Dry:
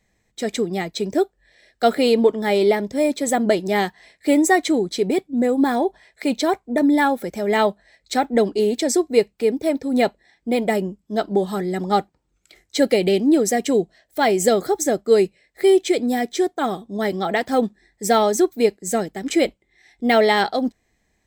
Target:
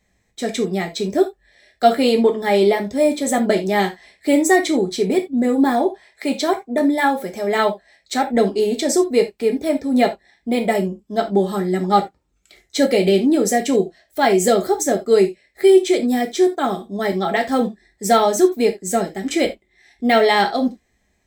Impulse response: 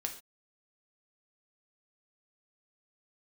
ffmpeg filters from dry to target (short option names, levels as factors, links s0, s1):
-filter_complex "[0:a]asettb=1/sr,asplit=3[s0][s1][s2];[s0]atrim=end=5.864[s3];[s1]atrim=start=5.86:end=8.26,asetpts=PTS-STARTPTS,afade=t=in:d=0.004:c=qsin,afade=t=out:st=2.396:d=0.004:c=qsin,lowshelf=f=130:g=-10[s4];[s2]atrim=start=8.256[s5];[s3][s4]acrossfade=d=0.004:c1=hsin:c2=qsin[s6];[s6][s5]acrossfade=d=0.004:c1=qsin:c2=hsin[s7];[1:a]atrim=start_sample=2205,asetrate=70560,aresample=44100[s8];[s7][s8]afir=irnorm=-1:irlink=0,volume=1.88"